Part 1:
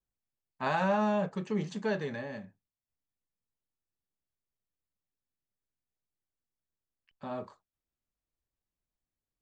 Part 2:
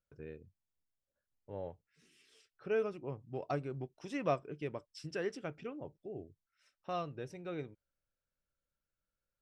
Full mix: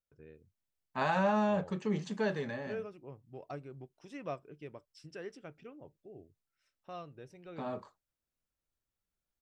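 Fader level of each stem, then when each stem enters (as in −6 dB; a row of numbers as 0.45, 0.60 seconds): −1.0, −7.0 decibels; 0.35, 0.00 seconds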